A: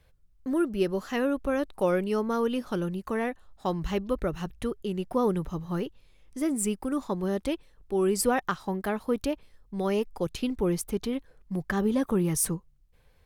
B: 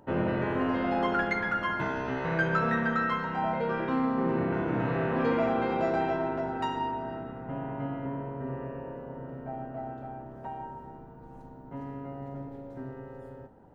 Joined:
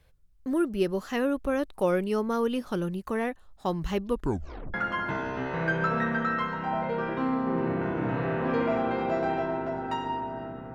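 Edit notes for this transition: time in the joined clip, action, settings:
A
4.09 tape stop 0.65 s
4.74 switch to B from 1.45 s

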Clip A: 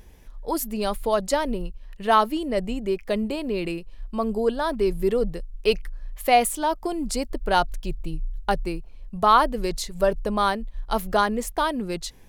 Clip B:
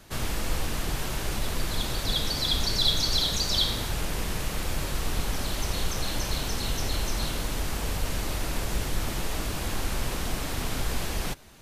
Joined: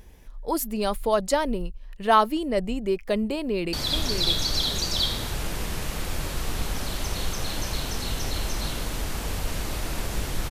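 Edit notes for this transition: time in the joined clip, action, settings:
clip A
3.32–3.73 echo throw 0.6 s, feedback 35%, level -6.5 dB
3.73 switch to clip B from 2.31 s

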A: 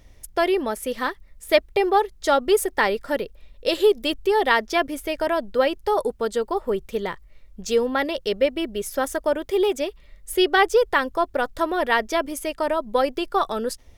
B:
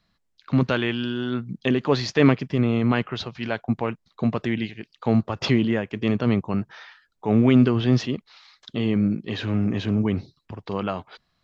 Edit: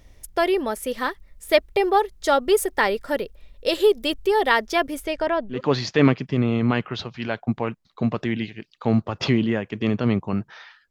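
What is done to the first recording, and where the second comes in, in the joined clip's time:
A
5.03–5.61 LPF 9300 Hz -> 1500 Hz
5.55 switch to B from 1.76 s, crossfade 0.12 s

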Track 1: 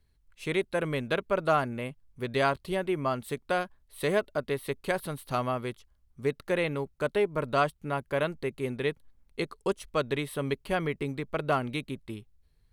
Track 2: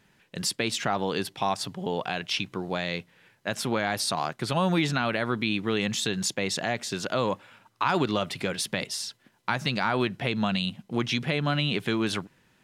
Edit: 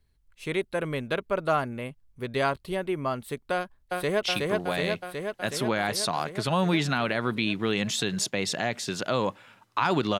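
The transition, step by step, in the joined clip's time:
track 1
3.54–4.23 echo throw 0.37 s, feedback 75%, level -1.5 dB
4.23 switch to track 2 from 2.27 s

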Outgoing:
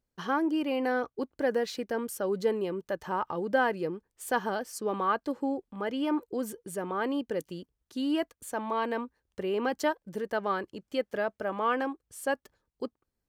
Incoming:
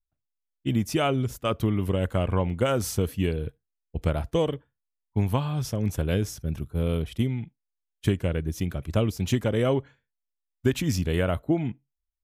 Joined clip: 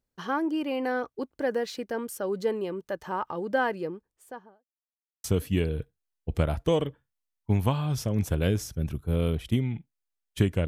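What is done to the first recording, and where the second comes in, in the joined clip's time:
outgoing
3.7–4.67 studio fade out
4.67–5.24 mute
5.24 switch to incoming from 2.91 s

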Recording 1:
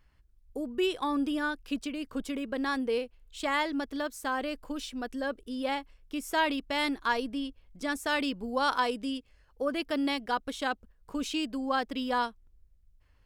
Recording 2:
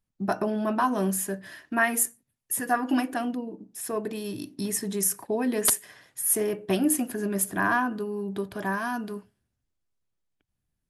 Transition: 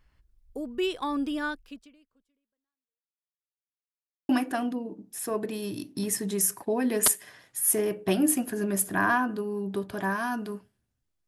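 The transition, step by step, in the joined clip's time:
recording 1
1.54–3.34 fade out exponential
3.34–4.29 mute
4.29 switch to recording 2 from 2.91 s

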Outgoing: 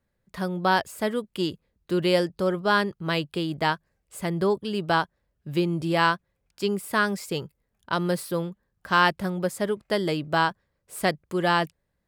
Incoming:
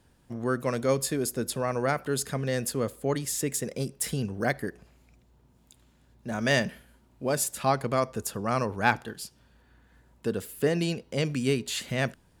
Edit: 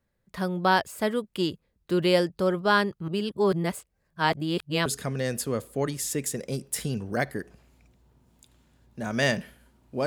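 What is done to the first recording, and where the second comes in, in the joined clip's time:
outgoing
3.08–4.86 reverse
4.86 switch to incoming from 2.14 s

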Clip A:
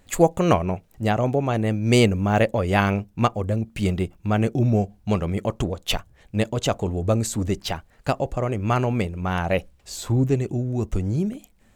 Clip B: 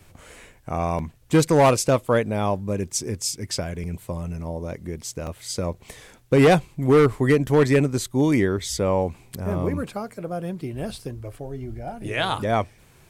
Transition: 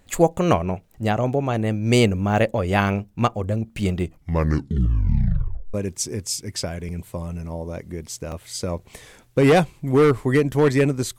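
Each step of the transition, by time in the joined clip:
clip A
3.96 tape stop 1.78 s
5.74 switch to clip B from 2.69 s

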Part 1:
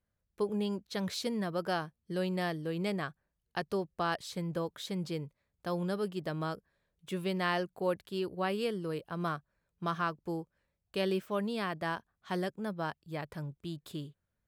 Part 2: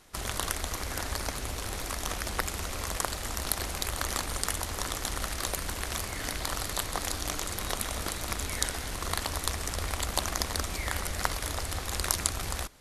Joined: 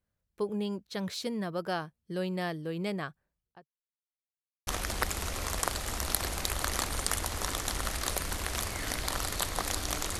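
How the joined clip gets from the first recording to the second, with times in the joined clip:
part 1
3.23–3.7 studio fade out
3.7–4.67 mute
4.67 switch to part 2 from 2.04 s

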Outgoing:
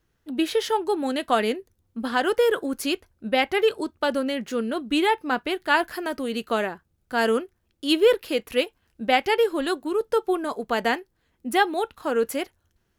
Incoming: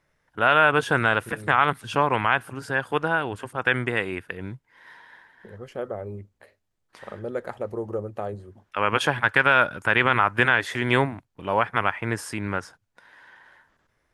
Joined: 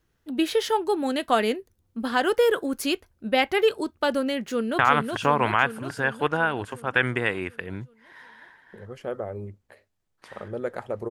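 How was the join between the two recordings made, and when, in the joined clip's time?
outgoing
4.47–4.79 echo throw 0.37 s, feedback 65%, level -3.5 dB
4.79 switch to incoming from 1.5 s

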